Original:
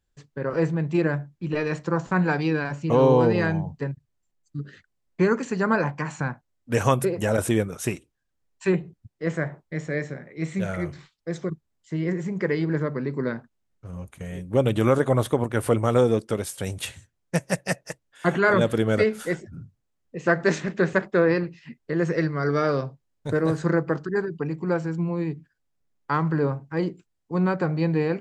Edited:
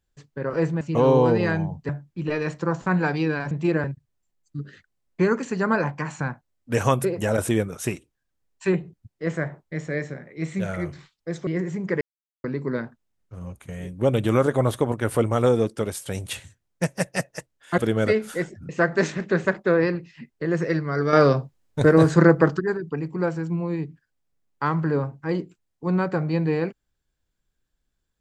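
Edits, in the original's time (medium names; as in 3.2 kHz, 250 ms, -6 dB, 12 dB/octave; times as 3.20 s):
0.81–1.14 s: swap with 2.76–3.84 s
11.47–11.99 s: delete
12.53–12.96 s: mute
18.30–18.69 s: delete
19.60–20.17 s: delete
22.61–24.08 s: gain +7.5 dB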